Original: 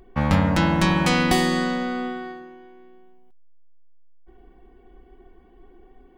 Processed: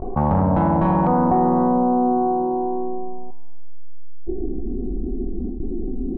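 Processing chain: Wiener smoothing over 25 samples; LPF 4600 Hz 24 dB/oct, from 1.07 s 1300 Hz; gate with hold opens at -42 dBFS; vocal rider 2 s; soft clip -16 dBFS, distortion -14 dB; low-pass sweep 870 Hz -> 250 Hz, 3.48–4.69; spring tank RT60 1.5 s, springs 32 ms, chirp 45 ms, DRR 15 dB; fast leveller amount 70%

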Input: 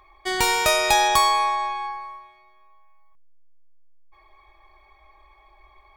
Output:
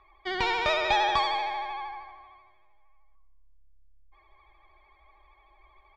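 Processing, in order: LPF 4100 Hz 24 dB/oct; de-hum 158.4 Hz, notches 11; vibrato 13 Hz 55 cents; frequency-shifting echo 0.18 s, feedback 36%, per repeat -34 Hz, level -15 dB; gain -5.5 dB

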